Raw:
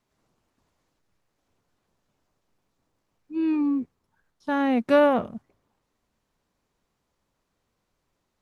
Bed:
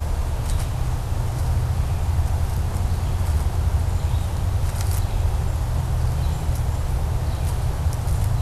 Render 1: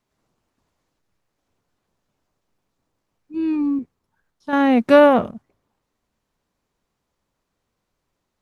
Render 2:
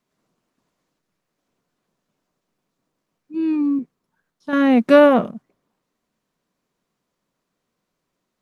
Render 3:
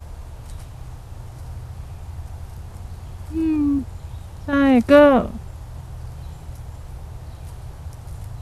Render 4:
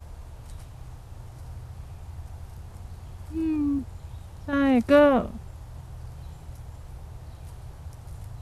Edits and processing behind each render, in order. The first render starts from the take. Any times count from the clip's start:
0:03.34–0:03.79: bass and treble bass +8 dB, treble +5 dB; 0:04.53–0:05.31: clip gain +7 dB
low shelf with overshoot 120 Hz −9 dB, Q 1.5; notch filter 840 Hz, Q 12
mix in bed −12.5 dB
level −6 dB

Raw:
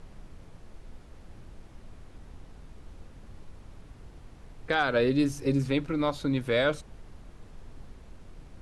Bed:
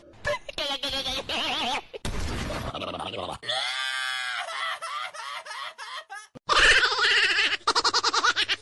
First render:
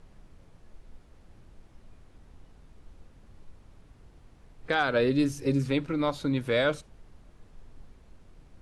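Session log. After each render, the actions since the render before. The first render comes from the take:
noise reduction from a noise print 6 dB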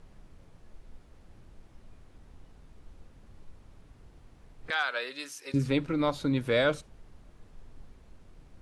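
0:04.70–0:05.54: high-pass filter 1,100 Hz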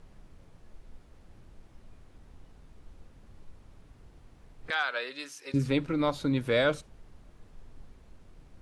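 0:04.75–0:05.55: high-shelf EQ 10,000 Hz −9.5 dB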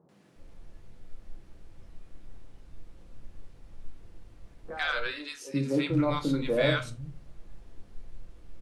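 three-band delay without the direct sound mids, highs, lows 90/360 ms, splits 150/970 Hz
rectangular room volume 130 cubic metres, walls furnished, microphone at 0.79 metres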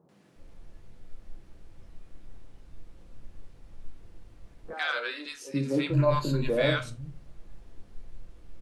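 0:04.73–0:05.26: Butterworth high-pass 230 Hz 48 dB per octave
0:05.93–0:06.50: EQ curve with evenly spaced ripples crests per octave 1.4, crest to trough 14 dB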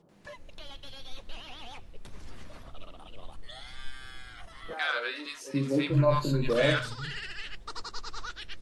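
mix in bed −18.5 dB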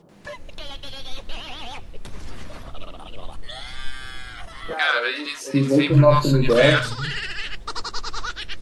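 level +10 dB
brickwall limiter −3 dBFS, peak gain reduction 2 dB

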